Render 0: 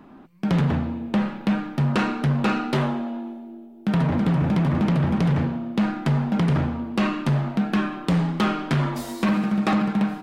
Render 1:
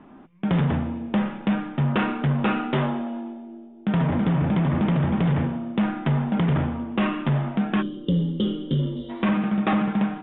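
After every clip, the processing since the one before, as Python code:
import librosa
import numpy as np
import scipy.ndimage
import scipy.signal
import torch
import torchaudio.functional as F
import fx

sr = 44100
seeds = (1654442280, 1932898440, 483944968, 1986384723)

y = fx.spec_box(x, sr, start_s=7.82, length_s=1.28, low_hz=590.0, high_hz=2800.0, gain_db=-23)
y = scipy.signal.sosfilt(scipy.signal.cheby1(8, 1.0, 3600.0, 'lowpass', fs=sr, output='sos'), y)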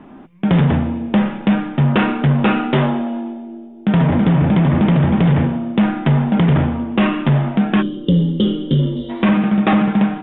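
y = fx.peak_eq(x, sr, hz=1200.0, db=-2.5, octaves=0.77)
y = y * 10.0 ** (8.0 / 20.0)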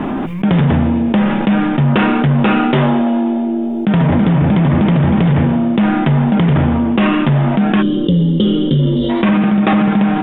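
y = fx.env_flatten(x, sr, amount_pct=70)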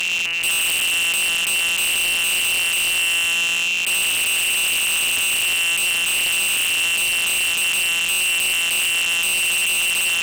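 y = np.r_[np.sort(x[:len(x) // 256 * 256].reshape(-1, 256), axis=1).ravel(), x[len(x) // 256 * 256:]]
y = fx.freq_invert(y, sr, carrier_hz=2900)
y = 10.0 ** (-15.0 / 20.0) * (np.abs((y / 10.0 ** (-15.0 / 20.0) + 3.0) % 4.0 - 2.0) - 1.0)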